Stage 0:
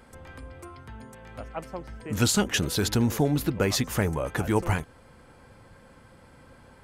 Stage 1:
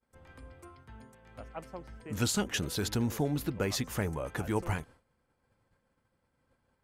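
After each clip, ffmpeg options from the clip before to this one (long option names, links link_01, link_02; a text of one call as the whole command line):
ffmpeg -i in.wav -af "agate=range=-33dB:threshold=-41dB:ratio=3:detection=peak,volume=-7dB" out.wav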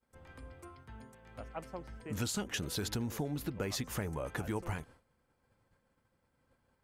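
ffmpeg -i in.wav -af "acompressor=threshold=-34dB:ratio=3" out.wav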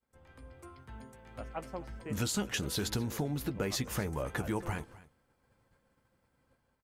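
ffmpeg -i in.wav -filter_complex "[0:a]dynaudnorm=framelen=250:gausssize=5:maxgain=7dB,asplit=2[link_01][link_02];[link_02]adelay=15,volume=-12.5dB[link_03];[link_01][link_03]amix=inputs=2:normalize=0,aecho=1:1:255:0.106,volume=-4.5dB" out.wav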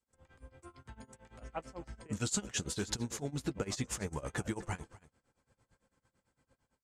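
ffmpeg -i in.wav -af "lowpass=frequency=7700:width_type=q:width=2.7,tremolo=f=8.9:d=0.91" out.wav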